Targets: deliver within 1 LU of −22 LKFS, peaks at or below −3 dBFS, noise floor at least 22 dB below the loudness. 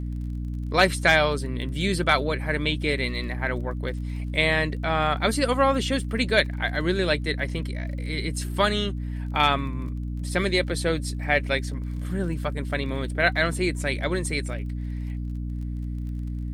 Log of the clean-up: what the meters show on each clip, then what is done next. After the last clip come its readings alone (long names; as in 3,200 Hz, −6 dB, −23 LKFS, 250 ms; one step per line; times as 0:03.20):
crackle rate 32 per second; mains hum 60 Hz; hum harmonics up to 300 Hz; level of the hum −28 dBFS; integrated loudness −25.5 LKFS; sample peak −5.5 dBFS; target loudness −22.0 LKFS
→ click removal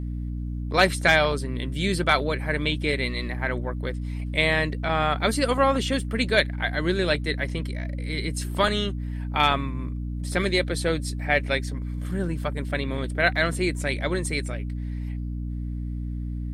crackle rate 0 per second; mains hum 60 Hz; hum harmonics up to 300 Hz; level of the hum −28 dBFS
→ hum removal 60 Hz, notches 5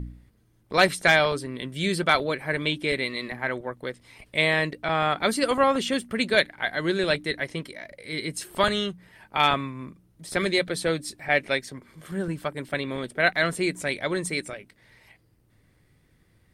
mains hum none found; integrated loudness −25.5 LKFS; sample peak −5.5 dBFS; target loudness −22.0 LKFS
→ level +3.5 dB
brickwall limiter −3 dBFS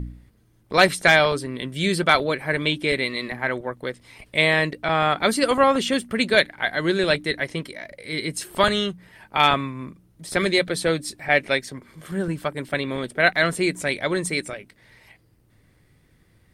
integrated loudness −22.0 LKFS; sample peak −3.0 dBFS; background noise floor −60 dBFS